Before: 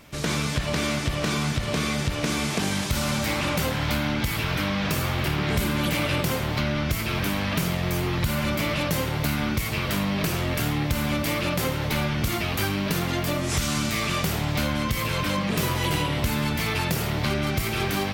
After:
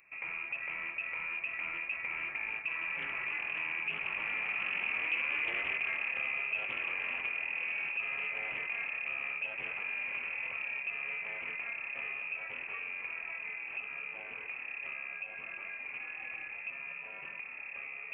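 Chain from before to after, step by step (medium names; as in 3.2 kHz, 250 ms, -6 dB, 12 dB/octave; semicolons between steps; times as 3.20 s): Doppler pass-by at 5.22 s, 30 m/s, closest 14 m; frequency inversion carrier 2.6 kHz; band-stop 1.5 kHz, Q 9.9; reverse; compression 5:1, threshold -43 dBFS, peak gain reduction 21 dB; reverse; tilt EQ +3 dB/octave; loudspeaker Doppler distortion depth 0.18 ms; trim +6 dB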